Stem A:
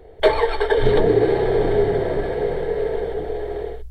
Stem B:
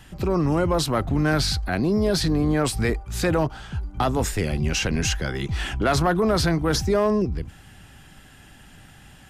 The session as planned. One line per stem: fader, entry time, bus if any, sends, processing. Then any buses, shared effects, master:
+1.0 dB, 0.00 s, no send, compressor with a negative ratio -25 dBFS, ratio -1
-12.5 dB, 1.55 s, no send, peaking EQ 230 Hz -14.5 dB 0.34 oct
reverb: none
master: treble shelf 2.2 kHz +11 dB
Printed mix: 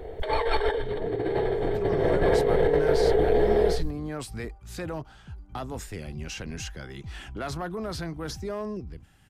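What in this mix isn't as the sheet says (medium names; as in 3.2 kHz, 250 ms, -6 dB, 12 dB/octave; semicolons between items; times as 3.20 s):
stem B: missing peaking EQ 230 Hz -14.5 dB 0.34 oct; master: missing treble shelf 2.2 kHz +11 dB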